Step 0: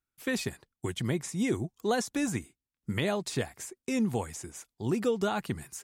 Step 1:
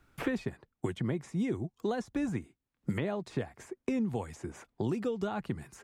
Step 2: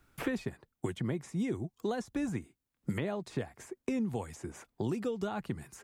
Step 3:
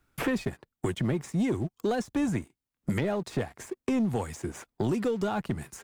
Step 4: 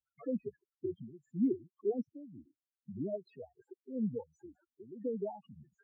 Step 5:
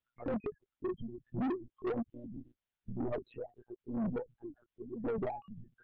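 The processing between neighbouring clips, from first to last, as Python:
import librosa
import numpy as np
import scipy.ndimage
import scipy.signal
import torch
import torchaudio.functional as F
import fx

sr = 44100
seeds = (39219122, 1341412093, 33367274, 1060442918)

y1 = fx.lowpass(x, sr, hz=1400.0, slope=6)
y1 = fx.band_squash(y1, sr, depth_pct=100)
y1 = F.gain(torch.from_numpy(y1), -3.0).numpy()
y2 = fx.high_shelf(y1, sr, hz=7000.0, db=7.5)
y2 = F.gain(torch.from_numpy(y2), -1.5).numpy()
y3 = fx.leveller(y2, sr, passes=2)
y4 = fx.spec_topn(y3, sr, count=4)
y4 = fx.wah_lfo(y4, sr, hz=1.9, low_hz=270.0, high_hz=1700.0, q=2.4)
y5 = fx.lpc_monotone(y4, sr, seeds[0], pitch_hz=120.0, order=10)
y5 = 10.0 ** (-37.5 / 20.0) * np.tanh(y5 / 10.0 ** (-37.5 / 20.0))
y5 = F.gain(torch.from_numpy(y5), 6.5).numpy()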